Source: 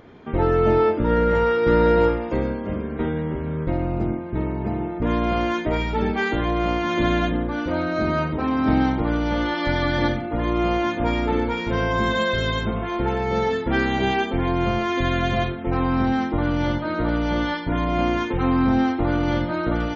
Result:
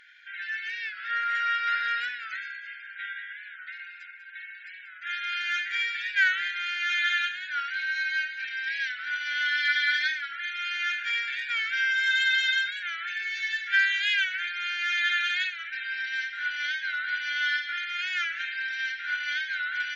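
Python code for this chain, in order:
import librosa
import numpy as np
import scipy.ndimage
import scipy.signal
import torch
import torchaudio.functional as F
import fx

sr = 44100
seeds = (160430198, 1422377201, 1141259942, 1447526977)

y = fx.brickwall_highpass(x, sr, low_hz=1400.0)
y = fx.cheby_harmonics(y, sr, harmonics=(8,), levels_db=(-44,), full_scale_db=-18.0)
y = fx.high_shelf(y, sr, hz=3200.0, db=-8.0)
y = y + 10.0 ** (-11.0 / 20.0) * np.pad(y, (int(194 * sr / 1000.0), 0))[:len(y)]
y = fx.record_warp(y, sr, rpm=45.0, depth_cents=100.0)
y = F.gain(torch.from_numpy(y), 7.0).numpy()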